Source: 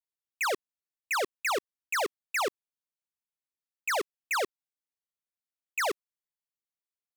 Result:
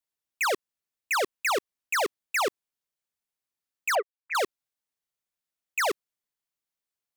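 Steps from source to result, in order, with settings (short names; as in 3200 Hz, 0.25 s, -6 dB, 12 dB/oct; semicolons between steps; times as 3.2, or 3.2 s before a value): 3.95–4.35 sine-wave speech; in parallel at -4.5 dB: soft clip -29 dBFS, distortion -21 dB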